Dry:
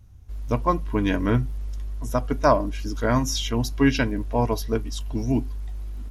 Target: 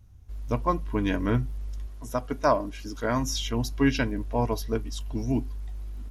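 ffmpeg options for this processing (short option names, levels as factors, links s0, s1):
-filter_complex "[0:a]asettb=1/sr,asplit=3[s0][s1][s2];[s0]atrim=end=1.874[s3];[s1]atrim=start=1.87:end=3.19,asetpts=PTS-STARTPTS,afade=t=in:d=0.004:c=qsin,afade=t=out:st=1.316:d=0.004:c=qsin,lowshelf=f=150:g=-7.5[s4];[s2]atrim=start=3.186[s5];[s3][s4]acrossfade=d=0.004:c1=hsin:c2=qsin[s6];[s6][s5]acrossfade=d=0.004:c1=qsin:c2=hsin,volume=0.668"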